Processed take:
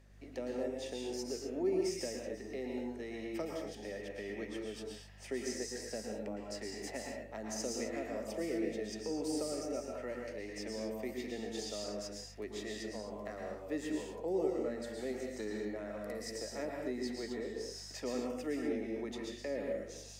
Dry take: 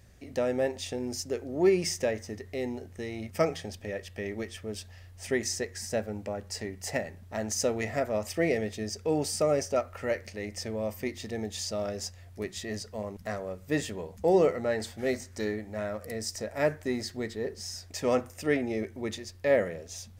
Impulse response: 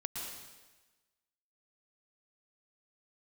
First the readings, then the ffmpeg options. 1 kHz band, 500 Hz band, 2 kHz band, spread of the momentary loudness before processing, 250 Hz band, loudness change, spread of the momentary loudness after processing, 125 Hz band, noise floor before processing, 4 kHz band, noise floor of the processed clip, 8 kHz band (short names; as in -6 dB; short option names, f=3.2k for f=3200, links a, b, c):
-10.5 dB, -9.0 dB, -10.5 dB, 11 LU, -5.5 dB, -8.5 dB, 7 LU, -14.0 dB, -50 dBFS, -7.5 dB, -50 dBFS, -8.5 dB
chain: -filter_complex "[0:a]highpass=f=250:w=0.5412,highpass=f=250:w=1.3066,aemphasis=mode=reproduction:type=cd,acrossover=split=340|5700[a][b][c];[b]acompressor=threshold=-38dB:ratio=6[d];[a][d][c]amix=inputs=3:normalize=0,aeval=exprs='val(0)+0.00178*(sin(2*PI*50*n/s)+sin(2*PI*2*50*n/s)/2+sin(2*PI*3*50*n/s)/3+sin(2*PI*4*50*n/s)/4+sin(2*PI*5*50*n/s)/5)':c=same[e];[1:a]atrim=start_sample=2205,afade=t=out:st=0.32:d=0.01,atrim=end_sample=14553[f];[e][f]afir=irnorm=-1:irlink=0,volume=-2.5dB"